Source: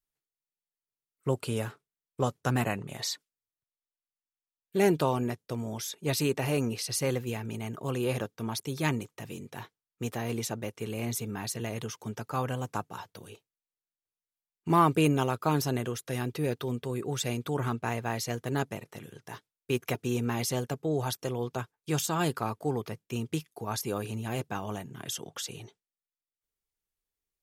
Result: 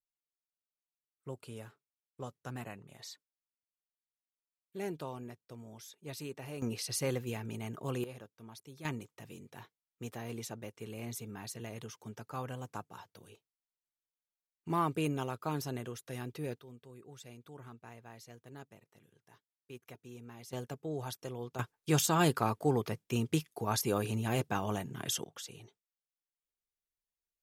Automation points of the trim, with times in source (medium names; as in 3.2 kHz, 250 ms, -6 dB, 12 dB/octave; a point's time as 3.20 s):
-15 dB
from 6.62 s -4.5 dB
from 8.04 s -17.5 dB
from 8.85 s -9 dB
from 16.59 s -20 dB
from 20.53 s -9 dB
from 21.59 s +1 dB
from 25.24 s -8.5 dB